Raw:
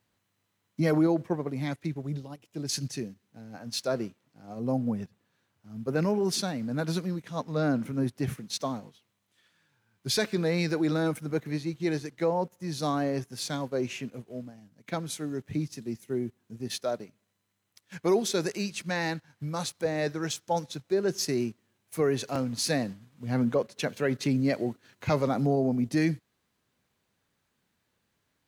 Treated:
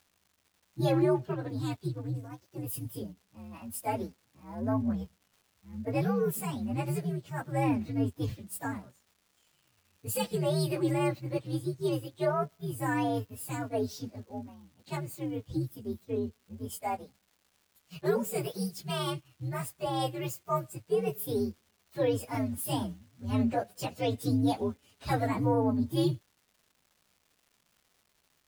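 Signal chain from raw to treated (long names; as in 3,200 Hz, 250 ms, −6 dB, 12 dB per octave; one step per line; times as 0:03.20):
partials spread apart or drawn together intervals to 129%
surface crackle 430 per second −55 dBFS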